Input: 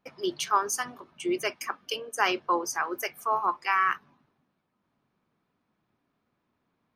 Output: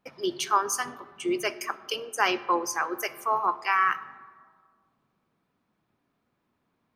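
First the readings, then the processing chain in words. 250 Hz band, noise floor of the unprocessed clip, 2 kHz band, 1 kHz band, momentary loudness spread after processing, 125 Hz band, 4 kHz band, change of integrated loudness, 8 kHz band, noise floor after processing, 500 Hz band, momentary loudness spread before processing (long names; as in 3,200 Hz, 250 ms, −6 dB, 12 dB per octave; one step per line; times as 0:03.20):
+1.0 dB, −78 dBFS, +1.0 dB, +1.0 dB, 11 LU, can't be measured, +1.0 dB, +1.0 dB, +1.0 dB, −77 dBFS, +1.0 dB, 9 LU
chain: comb and all-pass reverb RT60 1.9 s, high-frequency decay 0.35×, pre-delay 15 ms, DRR 16 dB
level +1 dB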